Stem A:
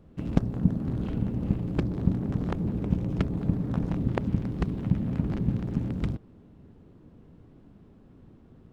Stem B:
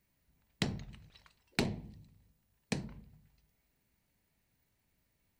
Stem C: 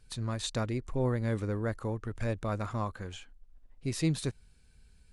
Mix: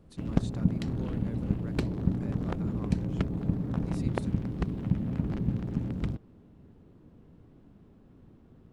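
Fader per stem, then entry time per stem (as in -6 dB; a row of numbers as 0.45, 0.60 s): -2.5, -8.5, -14.5 dB; 0.00, 0.20, 0.00 s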